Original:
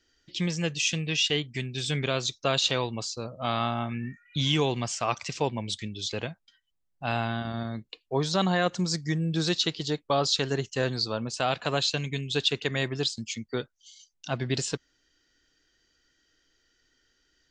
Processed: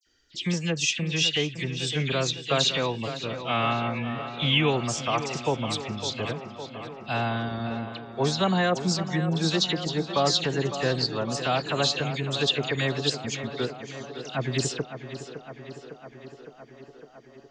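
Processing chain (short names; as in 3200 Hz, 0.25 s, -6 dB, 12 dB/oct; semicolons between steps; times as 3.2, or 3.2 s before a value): 2.98–4.67 resonant high shelf 4000 Hz -14 dB, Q 3; dispersion lows, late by 64 ms, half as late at 2800 Hz; tape echo 0.558 s, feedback 80%, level -9.5 dB, low-pass 3000 Hz; gain +1.5 dB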